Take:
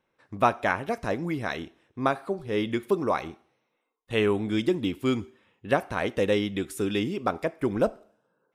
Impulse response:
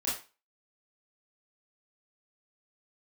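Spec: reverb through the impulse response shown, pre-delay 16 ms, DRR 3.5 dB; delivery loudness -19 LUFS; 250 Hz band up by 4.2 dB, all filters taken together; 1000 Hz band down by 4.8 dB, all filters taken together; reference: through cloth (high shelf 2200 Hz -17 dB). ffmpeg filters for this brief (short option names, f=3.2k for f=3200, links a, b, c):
-filter_complex "[0:a]equalizer=f=250:t=o:g=6,equalizer=f=1k:t=o:g=-3.5,asplit=2[a][b];[1:a]atrim=start_sample=2205,adelay=16[c];[b][c]afir=irnorm=-1:irlink=0,volume=-8.5dB[d];[a][d]amix=inputs=2:normalize=0,highshelf=f=2.2k:g=-17,volume=5.5dB"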